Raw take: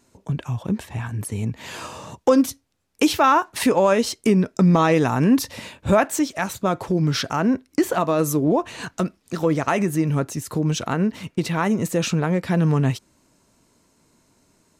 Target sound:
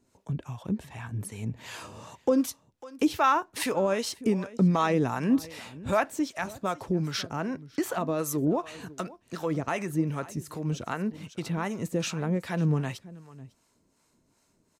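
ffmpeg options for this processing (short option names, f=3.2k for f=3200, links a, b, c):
-filter_complex "[0:a]asplit=2[a][b];[b]aecho=0:1:549:0.112[c];[a][c]amix=inputs=2:normalize=0,acrossover=split=580[d][e];[d]aeval=exprs='val(0)*(1-0.7/2+0.7/2*cos(2*PI*2.6*n/s))':c=same[f];[e]aeval=exprs='val(0)*(1-0.7/2-0.7/2*cos(2*PI*2.6*n/s))':c=same[g];[f][g]amix=inputs=2:normalize=0,volume=-5dB"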